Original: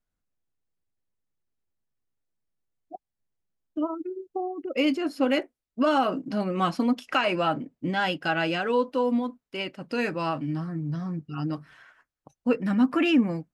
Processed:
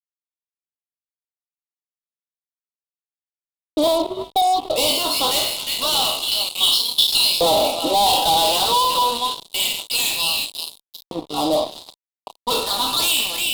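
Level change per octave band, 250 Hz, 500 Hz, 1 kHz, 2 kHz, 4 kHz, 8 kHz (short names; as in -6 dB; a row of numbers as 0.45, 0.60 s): -5.0 dB, +5.0 dB, +9.5 dB, +2.5 dB, +20.0 dB, n/a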